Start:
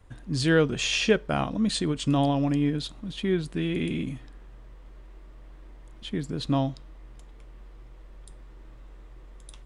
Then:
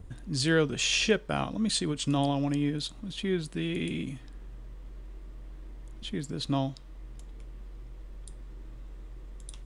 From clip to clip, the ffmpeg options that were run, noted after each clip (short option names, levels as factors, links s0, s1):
-filter_complex "[0:a]highshelf=f=3500:g=7.5,acrossover=split=400|3000[s0][s1][s2];[s0]acompressor=mode=upward:threshold=0.0282:ratio=2.5[s3];[s3][s1][s2]amix=inputs=3:normalize=0,volume=0.631"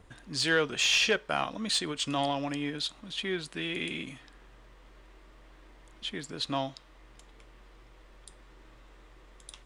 -filter_complex "[0:a]asplit=2[s0][s1];[s1]highpass=f=720:p=1,volume=3.55,asoftclip=type=tanh:threshold=0.251[s2];[s0][s2]amix=inputs=2:normalize=0,lowpass=f=3600:p=1,volume=0.501,lowshelf=f=470:g=-7"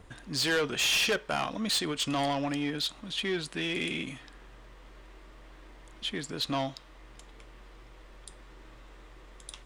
-af "asoftclip=type=tanh:threshold=0.0473,volume=1.5"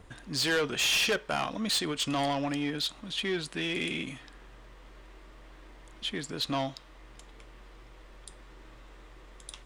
-af anull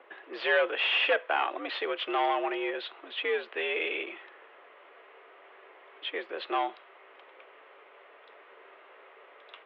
-af "highpass=f=320:t=q:w=0.5412,highpass=f=320:t=q:w=1.307,lowpass=f=2900:t=q:w=0.5176,lowpass=f=2900:t=q:w=0.7071,lowpass=f=2900:t=q:w=1.932,afreqshift=75,volume=1.5"